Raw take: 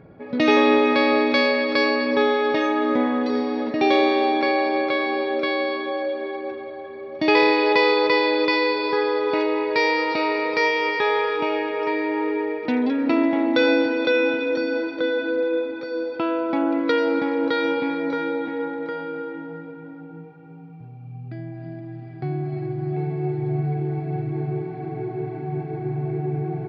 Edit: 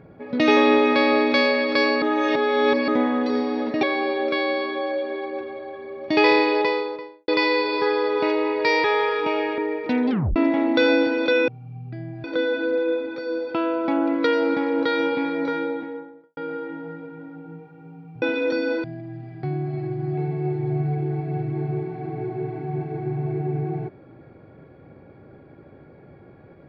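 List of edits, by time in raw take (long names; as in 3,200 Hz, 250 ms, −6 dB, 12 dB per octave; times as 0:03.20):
0:02.02–0:02.88: reverse
0:03.83–0:04.94: remove
0:07.42–0:08.39: fade out and dull
0:09.95–0:11.00: remove
0:11.74–0:12.37: remove
0:12.89: tape stop 0.26 s
0:14.27–0:14.89: swap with 0:20.87–0:21.63
0:18.15–0:19.02: fade out and dull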